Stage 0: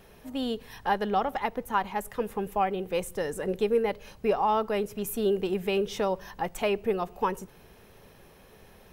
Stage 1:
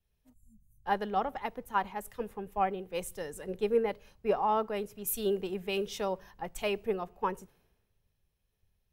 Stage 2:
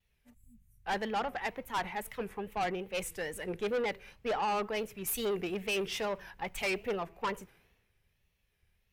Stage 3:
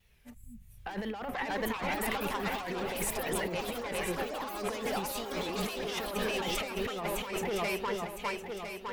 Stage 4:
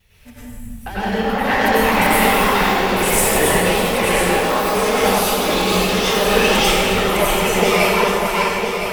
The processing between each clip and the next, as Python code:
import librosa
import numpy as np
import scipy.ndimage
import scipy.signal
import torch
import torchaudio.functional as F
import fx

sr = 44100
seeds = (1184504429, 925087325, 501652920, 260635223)

y1 = fx.spec_erase(x, sr, start_s=0.33, length_s=0.51, low_hz=220.0, high_hz=6000.0)
y1 = fx.band_widen(y1, sr, depth_pct=100)
y1 = F.gain(torch.from_numpy(y1), -5.5).numpy()
y2 = fx.peak_eq(y1, sr, hz=2200.0, db=10.5, octaves=1.1)
y2 = fx.wow_flutter(y2, sr, seeds[0], rate_hz=2.1, depth_cents=110.0)
y2 = fx.tube_stage(y2, sr, drive_db=30.0, bias=0.25)
y2 = F.gain(torch.from_numpy(y2), 2.0).numpy()
y3 = fx.echo_swing(y2, sr, ms=1009, ratio=1.5, feedback_pct=38, wet_db=-8.5)
y3 = fx.over_compress(y3, sr, threshold_db=-41.0, ratio=-1.0)
y3 = fx.echo_pitch(y3, sr, ms=699, semitones=5, count=3, db_per_echo=-6.0)
y3 = F.gain(torch.from_numpy(y3), 5.0).numpy()
y4 = fx.rev_plate(y3, sr, seeds[1], rt60_s=1.6, hf_ratio=0.9, predelay_ms=80, drr_db=-10.0)
y4 = F.gain(torch.from_numpy(y4), 8.5).numpy()